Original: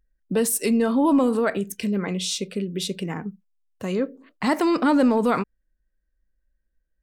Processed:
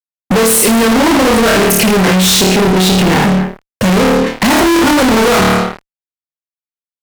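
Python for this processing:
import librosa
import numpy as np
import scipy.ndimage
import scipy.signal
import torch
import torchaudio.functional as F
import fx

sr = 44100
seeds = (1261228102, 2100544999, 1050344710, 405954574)

p1 = fx.air_absorb(x, sr, metres=150.0, at=(2.31, 3.23))
p2 = p1 + fx.room_flutter(p1, sr, wall_m=4.6, rt60_s=0.58, dry=0)
p3 = fx.fuzz(p2, sr, gain_db=44.0, gate_db=-50.0)
y = p3 * librosa.db_to_amplitude(4.5)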